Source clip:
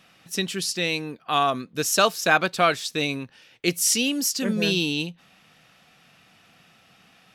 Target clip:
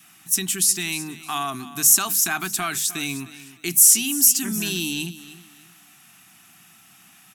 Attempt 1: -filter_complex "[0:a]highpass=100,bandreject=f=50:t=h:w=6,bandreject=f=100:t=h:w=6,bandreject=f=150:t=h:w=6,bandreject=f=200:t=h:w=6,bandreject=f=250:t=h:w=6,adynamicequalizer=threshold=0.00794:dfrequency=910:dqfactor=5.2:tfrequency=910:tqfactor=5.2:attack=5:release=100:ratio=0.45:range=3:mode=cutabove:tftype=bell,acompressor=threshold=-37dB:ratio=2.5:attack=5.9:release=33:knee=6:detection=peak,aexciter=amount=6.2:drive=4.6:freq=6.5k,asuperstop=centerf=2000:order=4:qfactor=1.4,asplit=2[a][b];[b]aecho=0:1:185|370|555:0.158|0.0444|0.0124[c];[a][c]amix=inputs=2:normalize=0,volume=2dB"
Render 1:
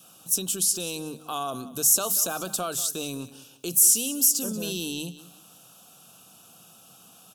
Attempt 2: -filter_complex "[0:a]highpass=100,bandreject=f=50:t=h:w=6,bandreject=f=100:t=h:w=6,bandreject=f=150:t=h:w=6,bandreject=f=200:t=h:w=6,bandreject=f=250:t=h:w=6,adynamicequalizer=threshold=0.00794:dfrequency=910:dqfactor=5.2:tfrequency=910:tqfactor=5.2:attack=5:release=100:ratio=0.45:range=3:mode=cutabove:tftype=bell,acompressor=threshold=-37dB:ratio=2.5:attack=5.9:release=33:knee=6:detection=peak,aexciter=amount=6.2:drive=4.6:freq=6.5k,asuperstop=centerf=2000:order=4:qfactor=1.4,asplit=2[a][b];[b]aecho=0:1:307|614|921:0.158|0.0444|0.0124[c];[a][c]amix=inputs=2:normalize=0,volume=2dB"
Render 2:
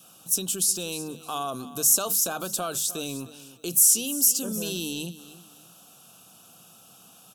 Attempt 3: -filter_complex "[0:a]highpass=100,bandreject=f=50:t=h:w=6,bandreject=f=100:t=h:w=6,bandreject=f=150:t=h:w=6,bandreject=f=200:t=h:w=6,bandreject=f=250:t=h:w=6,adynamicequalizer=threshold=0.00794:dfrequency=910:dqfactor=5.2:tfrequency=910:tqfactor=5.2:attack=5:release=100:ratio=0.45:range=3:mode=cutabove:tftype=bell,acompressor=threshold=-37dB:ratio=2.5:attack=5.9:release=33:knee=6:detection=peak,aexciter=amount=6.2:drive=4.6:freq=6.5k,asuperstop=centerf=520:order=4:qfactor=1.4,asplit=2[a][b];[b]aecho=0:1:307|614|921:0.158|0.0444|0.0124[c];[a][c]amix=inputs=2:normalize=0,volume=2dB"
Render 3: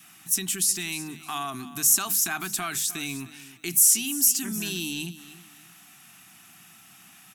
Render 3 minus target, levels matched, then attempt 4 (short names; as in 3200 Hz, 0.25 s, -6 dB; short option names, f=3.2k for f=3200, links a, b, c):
compressor: peak gain reduction +5 dB
-filter_complex "[0:a]highpass=100,bandreject=f=50:t=h:w=6,bandreject=f=100:t=h:w=6,bandreject=f=150:t=h:w=6,bandreject=f=200:t=h:w=6,bandreject=f=250:t=h:w=6,adynamicequalizer=threshold=0.00794:dfrequency=910:dqfactor=5.2:tfrequency=910:tqfactor=5.2:attack=5:release=100:ratio=0.45:range=3:mode=cutabove:tftype=bell,acompressor=threshold=-28.5dB:ratio=2.5:attack=5.9:release=33:knee=6:detection=peak,aexciter=amount=6.2:drive=4.6:freq=6.5k,asuperstop=centerf=520:order=4:qfactor=1.4,asplit=2[a][b];[b]aecho=0:1:307|614|921:0.158|0.0444|0.0124[c];[a][c]amix=inputs=2:normalize=0,volume=2dB"